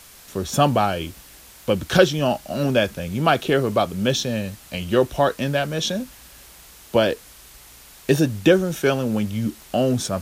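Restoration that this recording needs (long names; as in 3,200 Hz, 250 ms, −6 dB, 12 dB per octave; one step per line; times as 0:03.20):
click removal
broadband denoise 19 dB, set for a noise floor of −46 dBFS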